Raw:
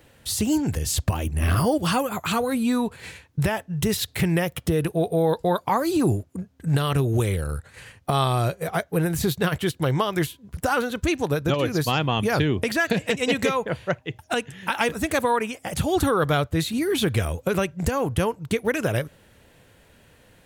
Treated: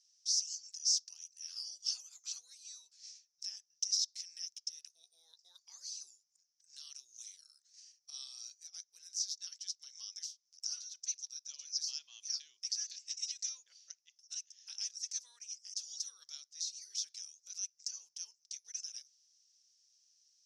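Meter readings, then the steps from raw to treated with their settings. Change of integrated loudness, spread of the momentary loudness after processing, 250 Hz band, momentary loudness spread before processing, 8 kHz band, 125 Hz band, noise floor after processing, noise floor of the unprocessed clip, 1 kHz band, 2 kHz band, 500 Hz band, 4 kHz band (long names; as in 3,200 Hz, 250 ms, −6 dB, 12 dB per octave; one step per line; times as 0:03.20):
−15.5 dB, 18 LU, below −40 dB, 7 LU, −3.0 dB, below −40 dB, −81 dBFS, −56 dBFS, below −40 dB, −37.0 dB, below −40 dB, −7.5 dB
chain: flat-topped band-pass 5,600 Hz, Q 5.3
level +6 dB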